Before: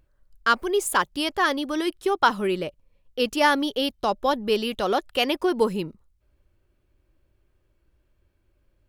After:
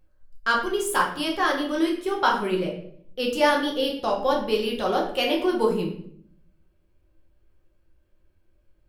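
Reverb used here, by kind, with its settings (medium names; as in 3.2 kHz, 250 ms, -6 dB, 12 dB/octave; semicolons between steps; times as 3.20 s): simulated room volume 110 m³, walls mixed, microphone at 0.94 m; trim -4.5 dB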